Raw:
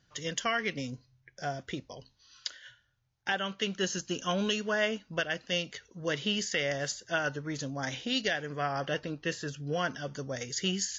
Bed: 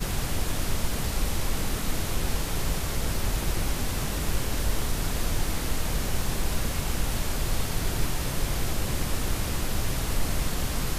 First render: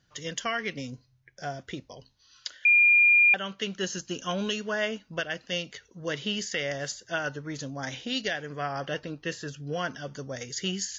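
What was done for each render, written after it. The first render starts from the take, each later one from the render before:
0:02.65–0:03.34: beep over 2,410 Hz −15.5 dBFS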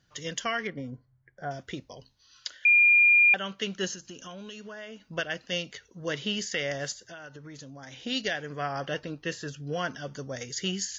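0:00.67–0:01.51: Savitzky-Golay smoothing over 41 samples
0:03.94–0:05.10: downward compressor 4 to 1, threshold −41 dBFS
0:06.92–0:08.05: downward compressor 5 to 1, threshold −42 dBFS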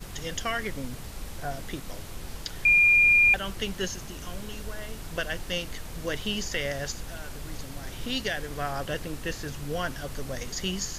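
mix in bed −11.5 dB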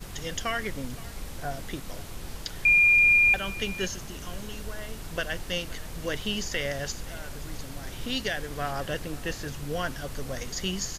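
single-tap delay 523 ms −20.5 dB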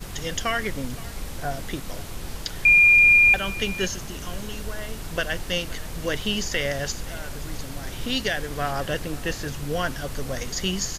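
level +4.5 dB

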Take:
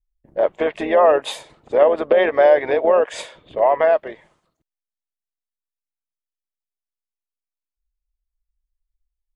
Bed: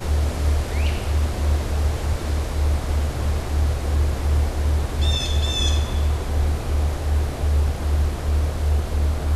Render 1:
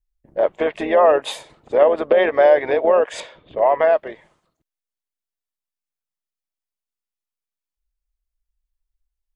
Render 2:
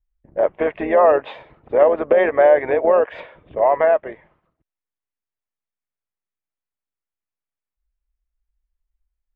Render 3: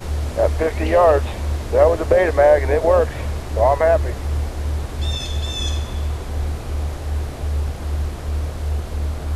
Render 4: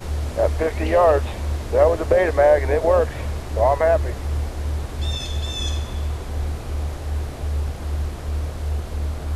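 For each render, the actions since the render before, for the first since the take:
0:03.20–0:03.66: high-frequency loss of the air 130 metres
low-pass filter 2,500 Hz 24 dB per octave; parametric band 68 Hz +5.5 dB 1.8 octaves
mix in bed −2.5 dB
level −2 dB

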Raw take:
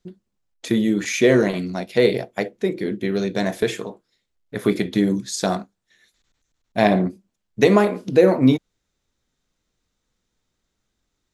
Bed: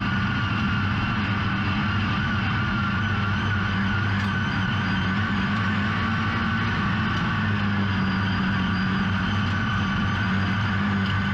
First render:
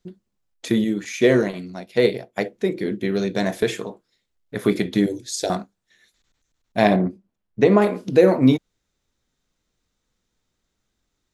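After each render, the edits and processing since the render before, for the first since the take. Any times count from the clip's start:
0:00.84–0:02.36: expander for the loud parts, over −27 dBFS
0:05.06–0:05.50: phaser with its sweep stopped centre 470 Hz, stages 4
0:06.96–0:07.82: low-pass filter 1,500 Hz 6 dB per octave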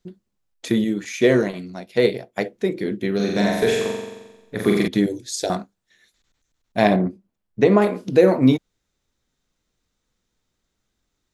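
0:03.15–0:04.88: flutter between parallel walls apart 7.6 metres, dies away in 1.1 s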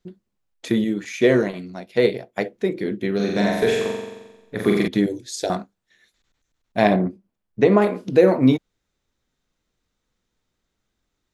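bass and treble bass −1 dB, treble −4 dB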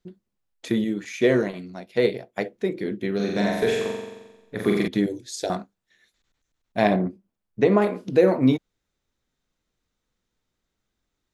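level −3 dB

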